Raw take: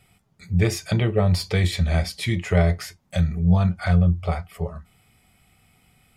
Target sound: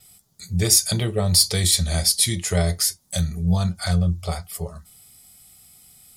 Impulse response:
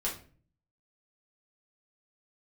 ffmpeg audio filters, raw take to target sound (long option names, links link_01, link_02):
-af "adynamicequalizer=threshold=0.00141:dfrequency=9900:dqfactor=4.1:tfrequency=9900:tqfactor=4.1:attack=5:release=100:ratio=0.375:range=3.5:mode=boostabove:tftype=bell,aexciter=amount=8:drive=3.8:freq=3700,volume=-2.5dB"